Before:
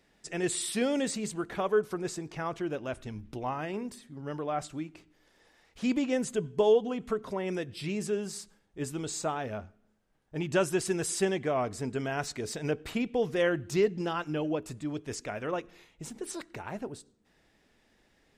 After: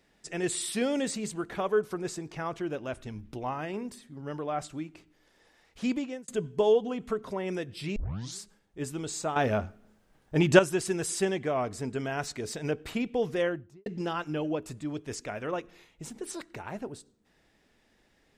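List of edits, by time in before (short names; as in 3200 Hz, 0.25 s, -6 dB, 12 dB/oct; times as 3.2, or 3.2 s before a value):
5.86–6.28 fade out
7.96 tape start 0.43 s
9.36–10.59 gain +9.5 dB
13.31–13.86 studio fade out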